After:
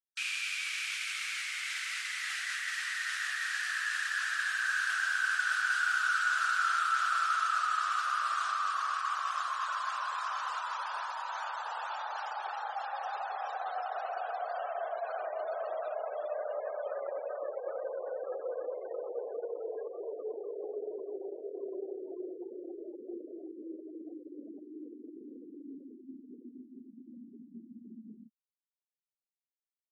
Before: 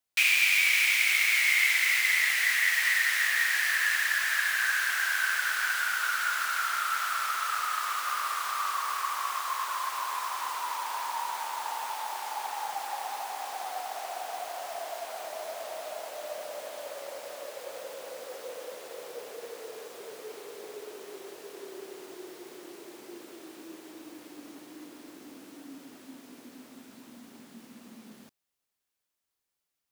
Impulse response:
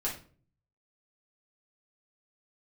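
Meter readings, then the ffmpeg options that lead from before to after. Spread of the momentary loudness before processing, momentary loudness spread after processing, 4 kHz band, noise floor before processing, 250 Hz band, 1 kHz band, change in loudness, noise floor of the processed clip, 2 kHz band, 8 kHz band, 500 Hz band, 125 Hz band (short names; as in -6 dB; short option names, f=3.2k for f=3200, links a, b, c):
23 LU, 20 LU, -7.5 dB, -85 dBFS, +2.0 dB, -1.0 dB, -7.0 dB, under -85 dBFS, -6.0 dB, -9.0 dB, +3.5 dB, n/a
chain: -af "afftdn=nr=19:nf=-47,bandreject=f=1.4k:w=22,afftfilt=real='re*gte(hypot(re,im),0.00708)':imag='im*gte(hypot(re,im),0.00708)':win_size=1024:overlap=0.75,areverse,acompressor=threshold=-37dB:ratio=6,areverse,highpass=220,equalizer=f=280:t=q:w=4:g=-5,equalizer=f=930:t=q:w=4:g=-8,equalizer=f=1.4k:t=q:w=4:g=9,equalizer=f=2.1k:t=q:w=4:g=-9,lowpass=f=9.6k:w=0.5412,lowpass=f=9.6k:w=1.3066,volume=6dB"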